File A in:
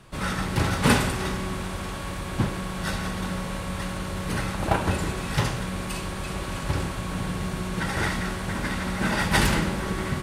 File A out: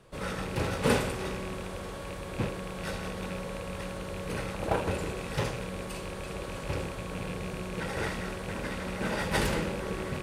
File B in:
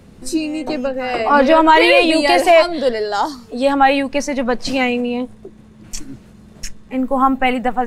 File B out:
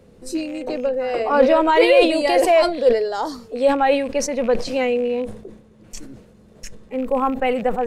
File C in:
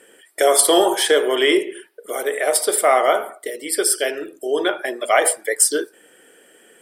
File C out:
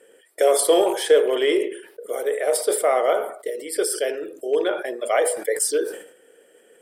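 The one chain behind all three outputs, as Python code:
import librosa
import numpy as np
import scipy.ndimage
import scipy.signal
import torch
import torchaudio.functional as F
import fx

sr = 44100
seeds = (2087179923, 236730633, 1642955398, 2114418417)

y = fx.rattle_buzz(x, sr, strikes_db=-28.0, level_db=-23.0)
y = fx.peak_eq(y, sr, hz=490.0, db=11.0, octaves=0.63)
y = fx.sustainer(y, sr, db_per_s=95.0)
y = F.gain(torch.from_numpy(y), -8.5).numpy()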